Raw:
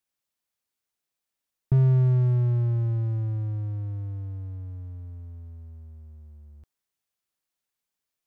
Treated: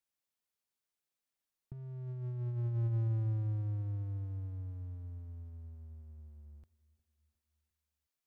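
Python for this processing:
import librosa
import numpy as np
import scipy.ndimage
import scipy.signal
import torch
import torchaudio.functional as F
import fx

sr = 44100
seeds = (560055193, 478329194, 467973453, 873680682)

y = fx.echo_feedback(x, sr, ms=358, feedback_pct=54, wet_db=-22.5)
y = fx.over_compress(y, sr, threshold_db=-25.0, ratio=-0.5)
y = F.gain(torch.from_numpy(y), -8.5).numpy()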